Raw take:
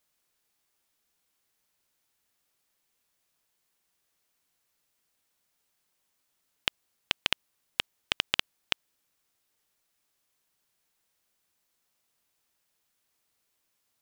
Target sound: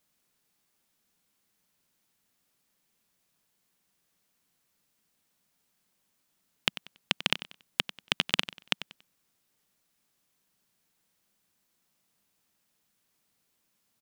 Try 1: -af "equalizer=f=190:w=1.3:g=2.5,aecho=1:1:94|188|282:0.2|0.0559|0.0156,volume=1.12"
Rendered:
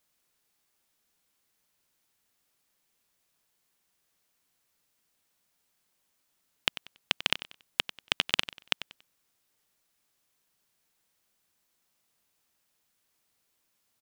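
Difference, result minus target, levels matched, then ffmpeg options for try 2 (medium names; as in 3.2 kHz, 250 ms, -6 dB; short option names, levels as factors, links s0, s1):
250 Hz band -4.5 dB
-af "equalizer=f=190:w=1.3:g=9.5,aecho=1:1:94|188|282:0.2|0.0559|0.0156,volume=1.12"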